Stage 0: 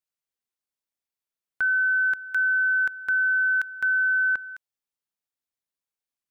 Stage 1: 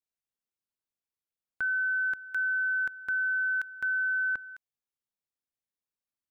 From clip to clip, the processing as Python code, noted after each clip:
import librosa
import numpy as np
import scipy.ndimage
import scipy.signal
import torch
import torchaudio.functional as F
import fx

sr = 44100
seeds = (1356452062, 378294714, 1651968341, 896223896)

y = fx.low_shelf(x, sr, hz=500.0, db=6.5)
y = y * librosa.db_to_amplitude(-7.0)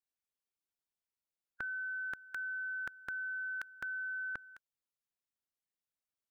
y = fx.hpss(x, sr, part='harmonic', gain_db=-11)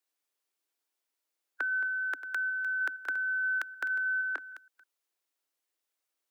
y = fx.reverse_delay(x, sr, ms=156, wet_db=-13.0)
y = scipy.signal.sosfilt(scipy.signal.butter(16, 270.0, 'highpass', fs=sr, output='sos'), y)
y = y * librosa.db_to_amplitude(8.0)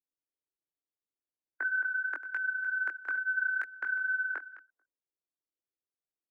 y = fx.env_lowpass(x, sr, base_hz=360.0, full_db=-33.5)
y = fx.high_shelf_res(y, sr, hz=2600.0, db=-10.5, q=1.5)
y = fx.chorus_voices(y, sr, voices=4, hz=1.1, base_ms=21, depth_ms=3.2, mix_pct=40)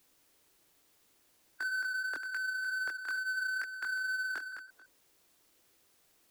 y = fx.power_curve(x, sr, exponent=0.5)
y = y * librosa.db_to_amplitude(-7.0)